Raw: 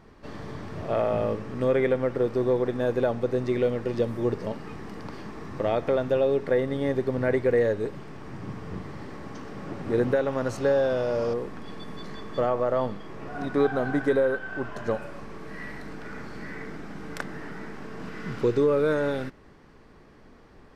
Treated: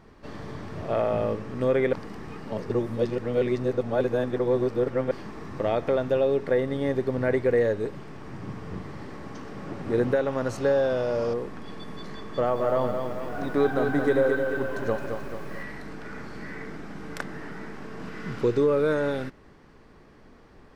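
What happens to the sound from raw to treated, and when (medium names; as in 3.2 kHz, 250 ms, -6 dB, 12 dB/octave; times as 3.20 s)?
1.93–5.11 s: reverse
12.24–15.63 s: bit-crushed delay 218 ms, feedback 55%, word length 9-bit, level -6 dB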